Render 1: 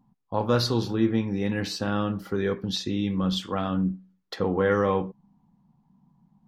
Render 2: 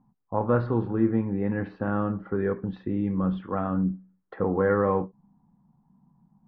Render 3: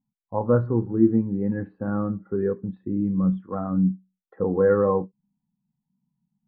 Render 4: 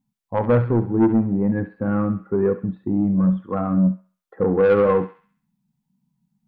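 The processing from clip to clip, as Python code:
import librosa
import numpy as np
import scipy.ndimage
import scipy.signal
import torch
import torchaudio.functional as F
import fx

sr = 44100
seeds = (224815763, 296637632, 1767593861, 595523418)

y1 = scipy.signal.sosfilt(scipy.signal.butter(4, 1700.0, 'lowpass', fs=sr, output='sos'), x)
y1 = fx.end_taper(y1, sr, db_per_s=330.0)
y2 = fx.spectral_expand(y1, sr, expansion=1.5)
y2 = F.gain(torch.from_numpy(y2), 3.5).numpy()
y3 = 10.0 ** (-16.5 / 20.0) * np.tanh(y2 / 10.0 ** (-16.5 / 20.0))
y3 = fx.echo_thinned(y3, sr, ms=67, feedback_pct=53, hz=1100.0, wet_db=-9.0)
y3 = F.gain(torch.from_numpy(y3), 6.0).numpy()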